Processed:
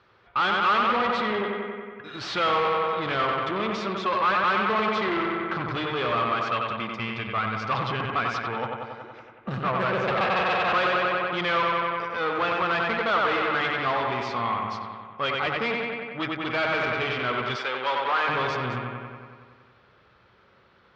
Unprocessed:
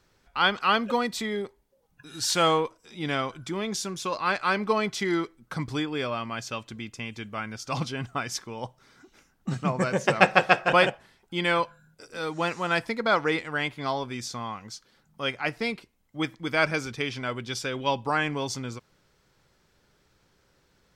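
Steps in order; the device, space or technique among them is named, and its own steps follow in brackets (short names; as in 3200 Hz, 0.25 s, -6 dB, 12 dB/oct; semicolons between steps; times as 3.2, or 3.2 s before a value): analogue delay pedal into a guitar amplifier (analogue delay 93 ms, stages 2048, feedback 70%, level -5 dB; tube stage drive 31 dB, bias 0.5; speaker cabinet 92–3700 Hz, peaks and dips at 160 Hz -8 dB, 280 Hz -8 dB, 1200 Hz +7 dB); 17.56–18.28 HPF 430 Hz 12 dB/oct; gain +8.5 dB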